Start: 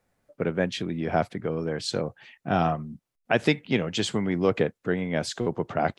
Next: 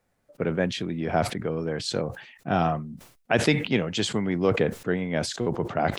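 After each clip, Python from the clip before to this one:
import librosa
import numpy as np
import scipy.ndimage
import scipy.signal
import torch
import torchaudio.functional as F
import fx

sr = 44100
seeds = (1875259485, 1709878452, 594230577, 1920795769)

y = fx.sustainer(x, sr, db_per_s=100.0)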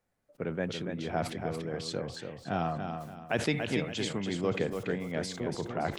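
y = fx.echo_feedback(x, sr, ms=285, feedback_pct=33, wet_db=-6.5)
y = F.gain(torch.from_numpy(y), -8.0).numpy()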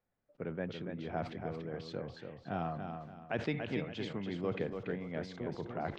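y = fx.air_absorb(x, sr, metres=220.0)
y = F.gain(torch.from_numpy(y), -5.0).numpy()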